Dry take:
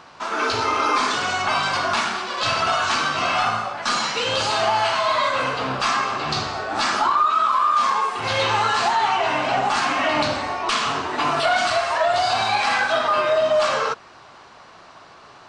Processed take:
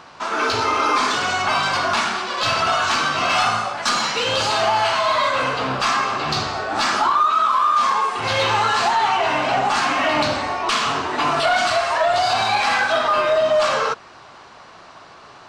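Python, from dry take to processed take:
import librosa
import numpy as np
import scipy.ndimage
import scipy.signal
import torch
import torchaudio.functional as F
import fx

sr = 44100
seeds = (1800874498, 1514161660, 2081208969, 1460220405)

p1 = fx.high_shelf(x, sr, hz=fx.line((3.29, 3700.0), (3.89, 6000.0)), db=9.0, at=(3.29, 3.89), fade=0.02)
p2 = np.clip(p1, -10.0 ** (-21.0 / 20.0), 10.0 ** (-21.0 / 20.0))
y = p1 + (p2 * librosa.db_to_amplitude(-10.0))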